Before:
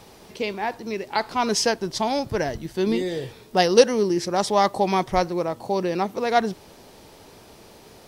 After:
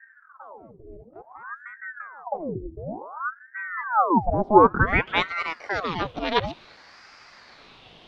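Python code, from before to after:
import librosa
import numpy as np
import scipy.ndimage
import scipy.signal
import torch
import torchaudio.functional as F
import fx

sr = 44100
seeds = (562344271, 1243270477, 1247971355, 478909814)

y = fx.filter_sweep_lowpass(x, sr, from_hz=130.0, to_hz=3200.0, start_s=3.69, end_s=5.45, q=5.4)
y = fx.ring_lfo(y, sr, carrier_hz=960.0, swing_pct=80, hz=0.56)
y = y * 10.0 ** (-1.5 / 20.0)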